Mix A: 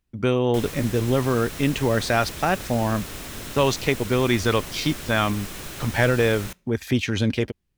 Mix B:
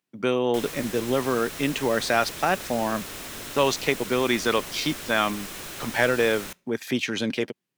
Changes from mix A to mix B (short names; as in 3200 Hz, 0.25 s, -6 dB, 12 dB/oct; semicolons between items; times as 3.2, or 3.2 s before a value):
speech: add HPF 140 Hz 24 dB/oct; master: add low shelf 180 Hz -10.5 dB